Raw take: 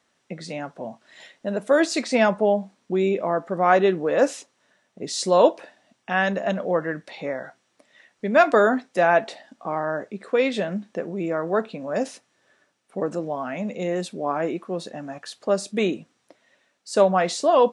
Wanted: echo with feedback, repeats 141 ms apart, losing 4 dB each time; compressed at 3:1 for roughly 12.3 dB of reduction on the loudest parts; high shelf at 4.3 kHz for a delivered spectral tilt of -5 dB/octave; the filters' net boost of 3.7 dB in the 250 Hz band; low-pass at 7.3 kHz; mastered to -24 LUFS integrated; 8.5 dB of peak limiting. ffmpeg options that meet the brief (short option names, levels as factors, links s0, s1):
-af "lowpass=7300,equalizer=f=250:t=o:g=5,highshelf=f=4300:g=-5,acompressor=threshold=0.0447:ratio=3,alimiter=limit=0.0708:level=0:latency=1,aecho=1:1:141|282|423|564|705|846|987|1128|1269:0.631|0.398|0.25|0.158|0.0994|0.0626|0.0394|0.0249|0.0157,volume=2.37"